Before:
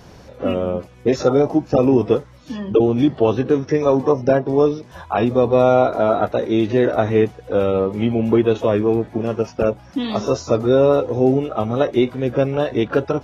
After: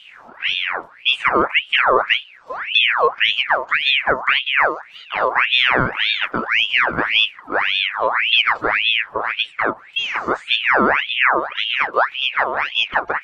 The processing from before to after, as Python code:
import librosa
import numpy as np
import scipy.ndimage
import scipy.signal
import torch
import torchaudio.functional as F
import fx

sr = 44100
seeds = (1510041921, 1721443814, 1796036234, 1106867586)

y = fx.tilt_shelf(x, sr, db=7.0, hz=920.0)
y = fx.notch(y, sr, hz=5700.0, q=9.5)
y = fx.ring_lfo(y, sr, carrier_hz=1900.0, swing_pct=60, hz=1.8)
y = y * 10.0 ** (-3.0 / 20.0)